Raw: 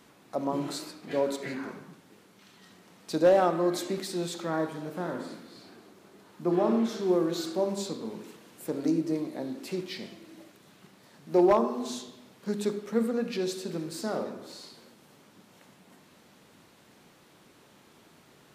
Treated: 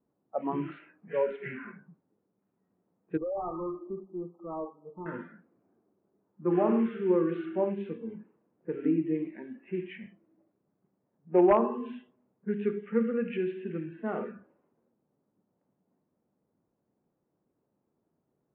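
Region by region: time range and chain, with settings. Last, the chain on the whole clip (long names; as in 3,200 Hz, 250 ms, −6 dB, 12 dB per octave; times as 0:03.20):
0:03.17–0:05.06: low-shelf EQ 270 Hz −10 dB + hard clipping −30.5 dBFS + linear-phase brick-wall low-pass 1,300 Hz
whole clip: low-pass that shuts in the quiet parts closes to 590 Hz, open at −26 dBFS; Butterworth low-pass 2,900 Hz 72 dB per octave; noise reduction from a noise print of the clip's start 18 dB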